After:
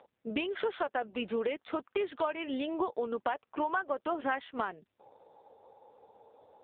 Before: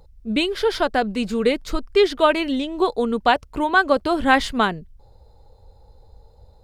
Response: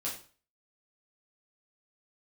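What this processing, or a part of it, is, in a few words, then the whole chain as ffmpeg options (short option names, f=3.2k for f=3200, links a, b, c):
voicemail: -filter_complex "[0:a]asplit=3[a][b][c];[a]afade=t=out:st=1.47:d=0.02[d];[b]highpass=f=160:w=0.5412,highpass=f=160:w=1.3066,afade=t=in:st=1.47:d=0.02,afade=t=out:st=2.15:d=0.02[e];[c]afade=t=in:st=2.15:d=0.02[f];[d][e][f]amix=inputs=3:normalize=0,highpass=420,lowpass=2.8k,acompressor=threshold=-34dB:ratio=6,volume=4.5dB" -ar 8000 -c:a libopencore_amrnb -b:a 5900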